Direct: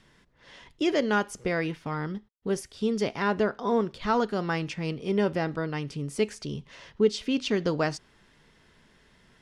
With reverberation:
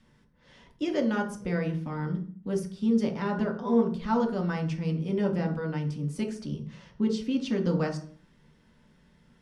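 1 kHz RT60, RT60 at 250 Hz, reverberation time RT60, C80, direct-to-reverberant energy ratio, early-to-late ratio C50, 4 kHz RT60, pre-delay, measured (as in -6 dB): 0.40 s, 0.75 s, 0.45 s, 15.0 dB, 1.0 dB, 9.0 dB, 0.40 s, 3 ms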